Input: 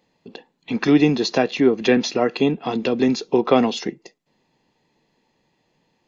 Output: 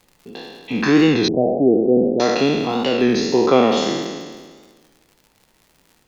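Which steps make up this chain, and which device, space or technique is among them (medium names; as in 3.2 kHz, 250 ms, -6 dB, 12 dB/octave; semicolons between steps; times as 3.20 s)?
spectral sustain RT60 1.58 s; warped LP (warped record 33 1/3 rpm, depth 100 cents; crackle 100 per s -37 dBFS; pink noise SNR 45 dB); 1.28–2.20 s: steep low-pass 720 Hz 48 dB/octave; trim -1 dB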